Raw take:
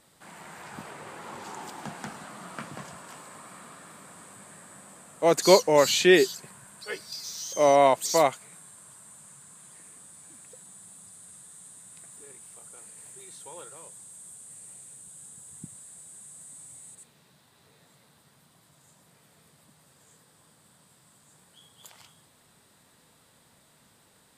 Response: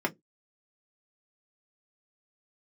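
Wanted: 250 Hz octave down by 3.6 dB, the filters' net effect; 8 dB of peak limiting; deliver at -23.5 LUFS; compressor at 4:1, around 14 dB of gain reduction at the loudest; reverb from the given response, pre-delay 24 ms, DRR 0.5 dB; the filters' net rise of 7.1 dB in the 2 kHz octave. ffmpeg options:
-filter_complex "[0:a]equalizer=f=250:t=o:g=-7,equalizer=f=2000:t=o:g=8,acompressor=threshold=0.0355:ratio=4,alimiter=level_in=1.06:limit=0.0631:level=0:latency=1,volume=0.944,asplit=2[s0][s1];[1:a]atrim=start_sample=2205,adelay=24[s2];[s1][s2]afir=irnorm=-1:irlink=0,volume=0.335[s3];[s0][s3]amix=inputs=2:normalize=0,volume=5.31"

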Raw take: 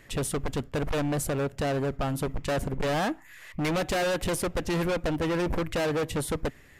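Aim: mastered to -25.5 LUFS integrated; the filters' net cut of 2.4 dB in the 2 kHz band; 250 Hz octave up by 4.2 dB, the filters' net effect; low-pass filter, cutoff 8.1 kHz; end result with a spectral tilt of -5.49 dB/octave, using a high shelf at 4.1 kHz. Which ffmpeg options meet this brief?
-af "lowpass=8100,equalizer=f=250:t=o:g=6,equalizer=f=2000:t=o:g=-4.5,highshelf=f=4100:g=6,volume=1.26"

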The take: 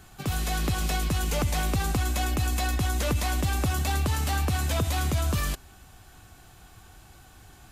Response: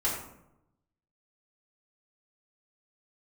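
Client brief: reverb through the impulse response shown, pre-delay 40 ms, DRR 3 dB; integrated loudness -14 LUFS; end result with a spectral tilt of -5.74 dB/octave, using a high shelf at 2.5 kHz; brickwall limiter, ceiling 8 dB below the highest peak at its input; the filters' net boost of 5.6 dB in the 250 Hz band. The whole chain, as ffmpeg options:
-filter_complex "[0:a]equalizer=f=250:t=o:g=7.5,highshelf=f=2500:g=-5,alimiter=limit=0.0841:level=0:latency=1,asplit=2[s0][s1];[1:a]atrim=start_sample=2205,adelay=40[s2];[s1][s2]afir=irnorm=-1:irlink=0,volume=0.282[s3];[s0][s3]amix=inputs=2:normalize=0,volume=4.73"

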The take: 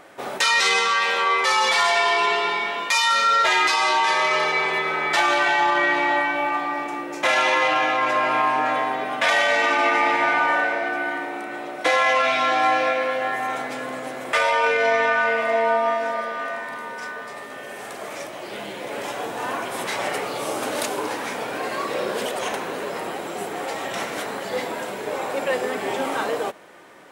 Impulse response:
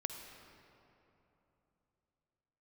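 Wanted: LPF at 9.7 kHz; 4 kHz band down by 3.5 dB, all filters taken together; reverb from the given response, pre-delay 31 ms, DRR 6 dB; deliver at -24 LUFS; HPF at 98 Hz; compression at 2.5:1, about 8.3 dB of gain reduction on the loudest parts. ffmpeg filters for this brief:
-filter_complex "[0:a]highpass=98,lowpass=9700,equalizer=f=4000:t=o:g=-4.5,acompressor=threshold=0.0355:ratio=2.5,asplit=2[s0][s1];[1:a]atrim=start_sample=2205,adelay=31[s2];[s1][s2]afir=irnorm=-1:irlink=0,volume=0.501[s3];[s0][s3]amix=inputs=2:normalize=0,volume=1.58"

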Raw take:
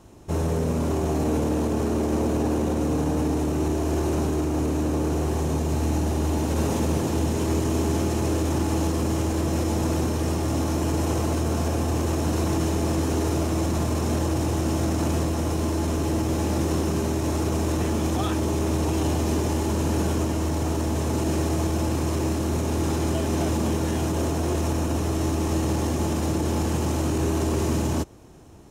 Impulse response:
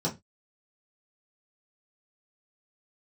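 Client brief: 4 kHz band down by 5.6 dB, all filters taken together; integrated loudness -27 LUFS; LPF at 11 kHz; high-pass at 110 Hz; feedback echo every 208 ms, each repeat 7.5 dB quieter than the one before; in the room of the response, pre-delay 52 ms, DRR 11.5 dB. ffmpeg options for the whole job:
-filter_complex "[0:a]highpass=110,lowpass=11000,equalizer=f=4000:t=o:g=-8,aecho=1:1:208|416|624|832|1040:0.422|0.177|0.0744|0.0312|0.0131,asplit=2[s0][s1];[1:a]atrim=start_sample=2205,adelay=52[s2];[s1][s2]afir=irnorm=-1:irlink=0,volume=0.112[s3];[s0][s3]amix=inputs=2:normalize=0,volume=0.794"

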